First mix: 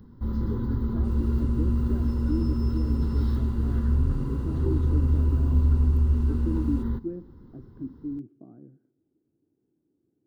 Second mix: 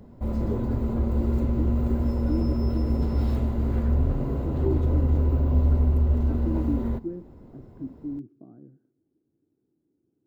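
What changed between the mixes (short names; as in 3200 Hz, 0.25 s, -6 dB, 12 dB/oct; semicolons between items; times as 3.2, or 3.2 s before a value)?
first sound: remove fixed phaser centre 2400 Hz, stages 6; second sound: add LPF 2900 Hz 12 dB/oct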